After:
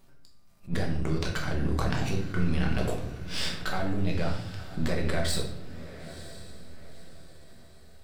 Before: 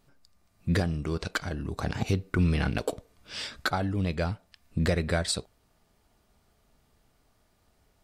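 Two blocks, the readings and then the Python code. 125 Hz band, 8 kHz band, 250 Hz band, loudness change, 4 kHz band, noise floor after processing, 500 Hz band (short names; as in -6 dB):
-1.0 dB, -1.0 dB, -0.5 dB, -1.0 dB, +0.5 dB, -50 dBFS, -1.0 dB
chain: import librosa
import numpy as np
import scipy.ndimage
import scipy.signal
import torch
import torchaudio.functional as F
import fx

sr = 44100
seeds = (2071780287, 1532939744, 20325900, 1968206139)

p1 = np.where(x < 0.0, 10.0 ** (-7.0 / 20.0) * x, x)
p2 = fx.high_shelf(p1, sr, hz=11000.0, db=3.5)
p3 = fx.over_compress(p2, sr, threshold_db=-36.0, ratio=-1.0)
p4 = p2 + F.gain(torch.from_numpy(p3), 3.0).numpy()
p5 = fx.echo_diffused(p4, sr, ms=969, feedback_pct=40, wet_db=-14)
p6 = fx.room_shoebox(p5, sr, seeds[0], volume_m3=200.0, walls='mixed', distance_m=1.1)
p7 = fx.attack_slew(p6, sr, db_per_s=300.0)
y = F.gain(torch.from_numpy(p7), -7.5).numpy()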